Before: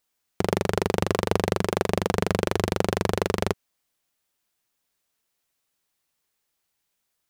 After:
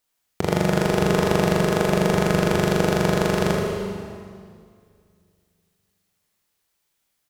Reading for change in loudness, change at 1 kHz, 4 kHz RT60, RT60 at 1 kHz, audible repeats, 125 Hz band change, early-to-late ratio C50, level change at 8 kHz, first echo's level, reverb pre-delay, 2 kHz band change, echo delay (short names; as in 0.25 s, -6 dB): +4.5 dB, +3.5 dB, 1.9 s, 2.1 s, 1, +6.5 dB, 0.0 dB, +4.0 dB, -7.0 dB, 21 ms, +5.0 dB, 78 ms